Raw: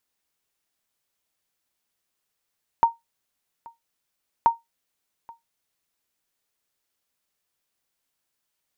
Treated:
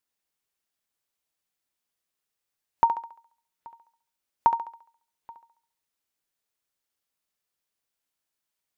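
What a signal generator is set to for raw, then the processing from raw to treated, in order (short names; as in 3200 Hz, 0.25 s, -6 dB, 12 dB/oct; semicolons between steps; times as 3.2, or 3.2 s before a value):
sonar ping 925 Hz, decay 0.17 s, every 1.63 s, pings 2, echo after 0.83 s, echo -25.5 dB -8.5 dBFS
spectral noise reduction 6 dB; on a send: thinning echo 69 ms, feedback 44%, high-pass 290 Hz, level -8 dB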